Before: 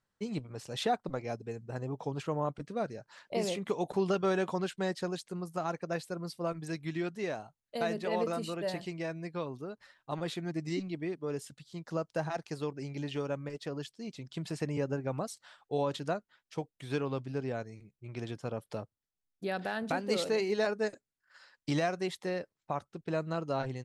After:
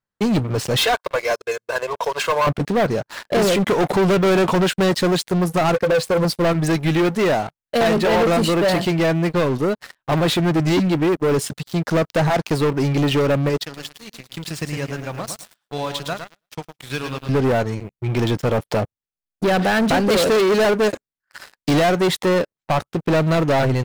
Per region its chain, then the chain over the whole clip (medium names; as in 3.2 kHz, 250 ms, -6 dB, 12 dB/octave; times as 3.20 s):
0.77–2.47 s: high-pass 870 Hz + comb 1.9 ms, depth 87%
5.74–6.25 s: low-pass 11 kHz + compression 2.5:1, threshold -38 dBFS + small resonant body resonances 510/1100 Hz, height 16 dB, ringing for 80 ms
13.63–17.29 s: amplifier tone stack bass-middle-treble 5-5-5 + bit-crushed delay 109 ms, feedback 35%, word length 12-bit, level -6.5 dB
whole clip: waveshaping leveller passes 5; peaking EQ 6.9 kHz -3 dB 1.4 oct; trim +5.5 dB